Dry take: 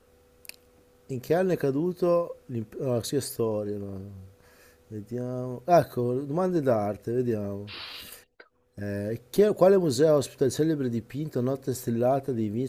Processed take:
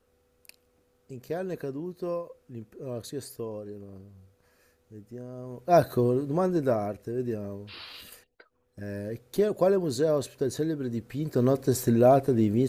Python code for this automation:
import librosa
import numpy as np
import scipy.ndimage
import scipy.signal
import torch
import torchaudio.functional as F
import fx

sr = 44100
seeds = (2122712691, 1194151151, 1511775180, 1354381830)

y = fx.gain(x, sr, db=fx.line((5.37, -8.5), (5.96, 4.0), (7.0, -4.0), (10.83, -4.0), (11.53, 5.0)))